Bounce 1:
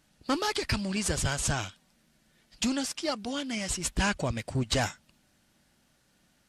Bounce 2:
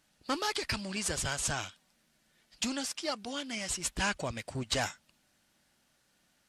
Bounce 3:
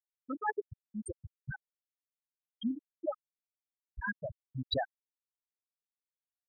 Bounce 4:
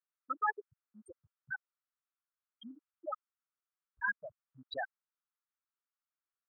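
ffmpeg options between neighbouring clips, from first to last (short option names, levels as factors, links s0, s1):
-af "lowshelf=f=360:g=-7.5,volume=0.794"
-af "tremolo=f=1.9:d=0.43,afftfilt=real='re*gte(hypot(re,im),0.126)':imag='im*gte(hypot(re,im),0.126)':win_size=1024:overlap=0.75,volume=1.58"
-af "bandpass=f=1300:t=q:w=3.4:csg=0,volume=2.66"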